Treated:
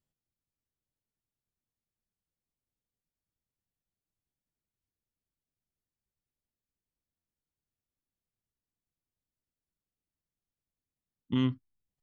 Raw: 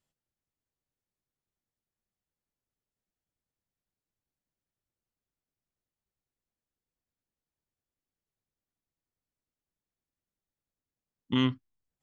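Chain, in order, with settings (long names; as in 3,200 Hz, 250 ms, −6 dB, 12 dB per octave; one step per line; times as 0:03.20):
low-shelf EQ 420 Hz +9 dB
buffer that repeats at 0:07.17, samples 512, times 6
wow of a warped record 33 1/3 rpm, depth 250 cents
level −8 dB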